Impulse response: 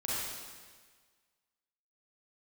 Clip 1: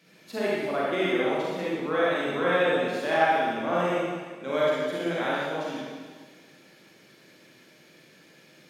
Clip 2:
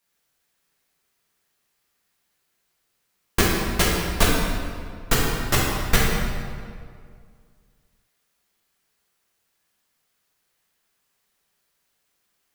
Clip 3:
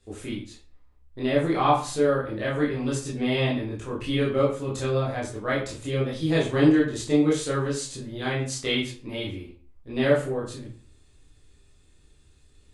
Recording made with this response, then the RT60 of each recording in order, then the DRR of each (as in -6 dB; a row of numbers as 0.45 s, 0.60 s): 1; 1.5 s, 2.1 s, 0.45 s; -8.0 dB, -5.5 dB, -6.5 dB